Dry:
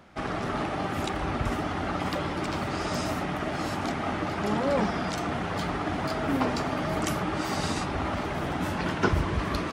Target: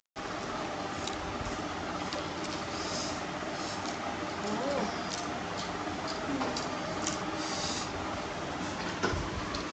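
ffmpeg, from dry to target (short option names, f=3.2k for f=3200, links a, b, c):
-af "bass=f=250:g=-5,treble=f=4k:g=10,acrusher=bits=6:mix=0:aa=0.000001,aecho=1:1:10|57:0.178|0.376,volume=-6dB" -ar 16000 -c:a pcm_mulaw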